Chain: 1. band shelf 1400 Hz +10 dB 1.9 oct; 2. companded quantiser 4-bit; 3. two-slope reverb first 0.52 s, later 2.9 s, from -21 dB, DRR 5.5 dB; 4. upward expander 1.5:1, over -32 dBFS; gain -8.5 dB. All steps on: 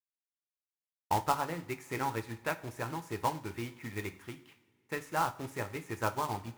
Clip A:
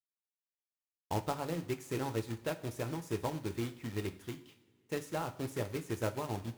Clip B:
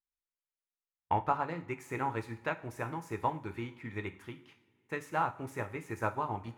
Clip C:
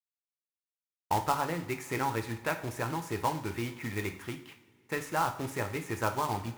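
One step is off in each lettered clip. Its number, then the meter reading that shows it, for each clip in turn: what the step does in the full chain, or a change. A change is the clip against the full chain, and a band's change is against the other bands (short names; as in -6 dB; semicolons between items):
1, 1 kHz band -8.5 dB; 2, distortion -14 dB; 4, crest factor change -2.5 dB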